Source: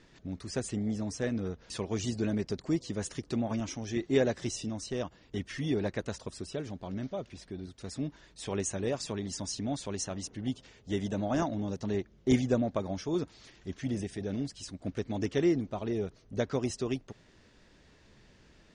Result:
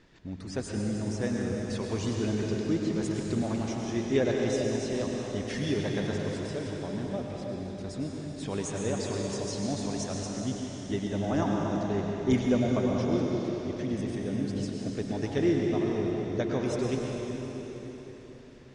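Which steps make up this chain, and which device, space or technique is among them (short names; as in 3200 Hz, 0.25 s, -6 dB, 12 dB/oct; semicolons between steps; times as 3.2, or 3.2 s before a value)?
5.43–5.83 high shelf 3500 Hz +10 dB; swimming-pool hall (reverb RT60 4.2 s, pre-delay 93 ms, DRR -1.5 dB; high shelf 5700 Hz -6.5 dB)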